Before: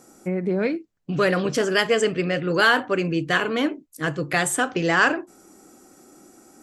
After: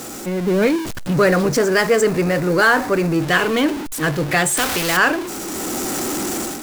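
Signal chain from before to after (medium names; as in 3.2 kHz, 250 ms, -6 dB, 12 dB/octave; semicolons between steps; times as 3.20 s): jump at every zero crossing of -25 dBFS; 1.13–3.22 s: peaking EQ 3.1 kHz -10 dB 0.55 oct; level rider gain up to 9.5 dB; bit crusher 8-bit; 4.57–4.97 s: spectrum-flattening compressor 2:1; trim -2 dB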